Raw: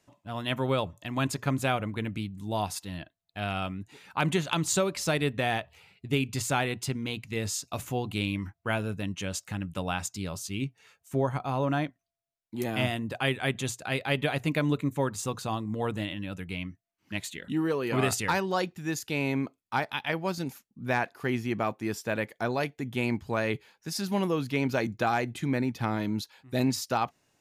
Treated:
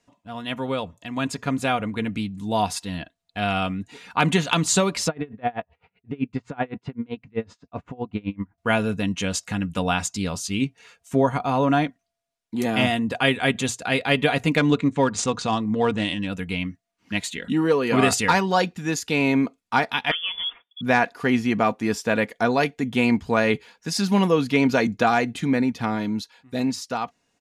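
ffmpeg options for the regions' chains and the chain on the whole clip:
-filter_complex "[0:a]asettb=1/sr,asplit=3[s0][s1][s2];[s0]atrim=end=5.084[s3];[s1]atrim=start=5.08:end=8.58,asetpts=PTS-STARTPTS,afade=t=in:d=0.004:c=qsin,afade=t=out:st=3.496:d=0.004:c=qsin,lowpass=1500,aeval=exprs='val(0)*pow(10,-30*(0.5-0.5*cos(2*PI*7.8*n/s))/20)':c=same[s4];[s2]atrim=start=8.576[s5];[s3][s4]acrossfade=d=0.004:c1=hsin:c2=qsin[s6];[s6][s5]acrossfade=d=0.004:c1=qsin:c2=hsin,asettb=1/sr,asplit=3[s7][s8][s9];[s7]atrim=end=14.574[s10];[s8]atrim=start=14.57:end=16.27,asetpts=PTS-STARTPTS,afade=t=in:d=0.004:c=qsin,afade=t=out:st=1.696:d=0.004:c=qsin,highshelf=f=4000:g=8,adynamicsmooth=sensitivity=6.5:basefreq=3500,lowpass=f=9100:w=0.5412,lowpass=f=9100:w=1.3066[s11];[s9]atrim=start=16.266[s12];[s10][s11]acrossfade=d=0.004:c1=hsin:c2=qsin[s13];[s13][s12]acrossfade=d=0.004:c1=qsin:c2=hsin,asettb=1/sr,asplit=3[s14][s15][s16];[s14]atrim=end=20.114[s17];[s15]atrim=start=20.11:end=20.81,asetpts=PTS-STARTPTS,afade=t=in:d=0.004:c=qsin,afade=t=out:st=0.696:d=0.004:c=qsin,acompressor=threshold=0.0282:ratio=4:attack=3.2:release=140:knee=1:detection=peak,lowpass=f=3100:t=q:w=0.5098,lowpass=f=3100:t=q:w=0.6013,lowpass=f=3100:t=q:w=0.9,lowpass=f=3100:t=q:w=2.563,afreqshift=-3600[s18];[s16]atrim=start=20.806[s19];[s17][s18]acrossfade=d=0.004:c1=hsin:c2=qsin[s20];[s20][s19]acrossfade=d=0.004:c1=qsin:c2=hsin,lowpass=9300,aecho=1:1:4.2:0.45,dynaudnorm=f=120:g=31:m=2.51"

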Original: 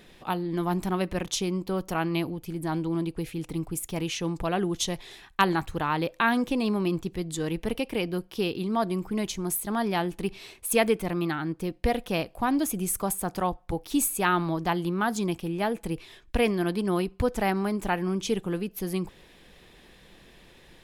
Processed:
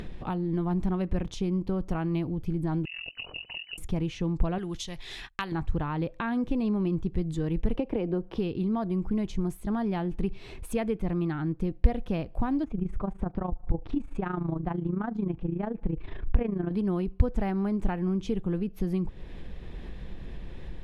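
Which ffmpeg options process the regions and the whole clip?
-filter_complex "[0:a]asettb=1/sr,asplit=3[s0][s1][s2];[s0]atrim=end=2.854[s3];[s1]atrim=start=2.85:end=3.78,asetpts=PTS-STARTPTS,afade=t=in:d=0.004:c=qsin,afade=t=out:st=0.926:d=0.004:c=qsin,tremolo=f=43:d=0.889,lowpass=f=2600:t=q:w=0.5098,lowpass=f=2600:t=q:w=0.6013,lowpass=f=2600:t=q:w=0.9,lowpass=f=2600:t=q:w=2.563,afreqshift=-3000[s4];[s2]atrim=start=3.776[s5];[s3][s4]acrossfade=d=0.004:c1=hsin:c2=qsin[s6];[s6][s5]acrossfade=d=0.004:c1=qsin:c2=hsin,asettb=1/sr,asplit=3[s7][s8][s9];[s7]atrim=end=4.584[s10];[s8]atrim=start=4.58:end=5.52,asetpts=PTS-STARTPTS,afade=t=in:d=0.004:c=qsin,afade=t=out:st=0.936:d=0.004:c=qsin,agate=range=0.0398:threshold=0.00282:ratio=16:release=100:detection=peak,tiltshelf=f=1200:g=-9.5[s11];[s9]atrim=start=5.516[s12];[s10][s11]acrossfade=d=0.004:c1=hsin:c2=qsin[s13];[s13][s12]acrossfade=d=0.004:c1=qsin:c2=hsin,asettb=1/sr,asplit=3[s14][s15][s16];[s14]atrim=end=7.774[s17];[s15]atrim=start=7.77:end=8.38,asetpts=PTS-STARTPTS,afade=t=in:d=0.004:c=qsin,afade=t=out:st=0.606:d=0.004:c=qsin,equalizer=f=570:w=0.37:g=12.5,acrossover=split=89|190|5800[s18][s19][s20][s21];[s18]acompressor=threshold=0.00251:ratio=3[s22];[s19]acompressor=threshold=0.01:ratio=3[s23];[s20]acompressor=threshold=0.0631:ratio=3[s24];[s21]acompressor=threshold=0.001:ratio=3[s25];[s22][s23][s24][s25]amix=inputs=4:normalize=0[s26];[s16]atrim=start=8.376[s27];[s17][s26]acrossfade=d=0.004:c1=hsin:c2=qsin[s28];[s28][s27]acrossfade=d=0.004:c1=qsin:c2=hsin,asettb=1/sr,asplit=3[s29][s30][s31];[s29]atrim=end=12.644[s32];[s30]atrim=start=12.64:end=16.71,asetpts=PTS-STARTPTS,afade=t=in:d=0.004:c=qsin,afade=t=out:st=4.066:d=0.004:c=qsin,lowpass=2000,acompressor=mode=upward:threshold=0.0316:ratio=2.5:attack=3.2:release=140:knee=2.83:detection=peak,tremolo=f=27:d=0.75[s33];[s31]atrim=start=16.706[s34];[s32][s33]acrossfade=d=0.004:c1=hsin:c2=qsin[s35];[s35][s34]acrossfade=d=0.004:c1=qsin:c2=hsin,acompressor=threshold=0.0141:ratio=2,aemphasis=mode=reproduction:type=riaa,acompressor=mode=upward:threshold=0.0282:ratio=2.5"

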